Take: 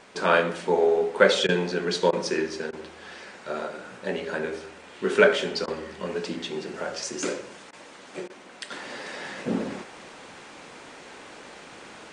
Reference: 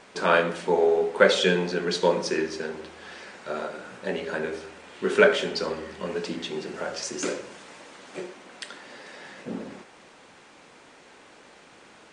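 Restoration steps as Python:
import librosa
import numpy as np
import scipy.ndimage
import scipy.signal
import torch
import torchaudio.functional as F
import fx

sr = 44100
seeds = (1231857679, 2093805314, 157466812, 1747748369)

y = fx.fix_interpolate(x, sr, at_s=(1.47, 2.11, 2.71, 5.66, 7.71, 8.28), length_ms=17.0)
y = fx.fix_level(y, sr, at_s=8.71, step_db=-7.0)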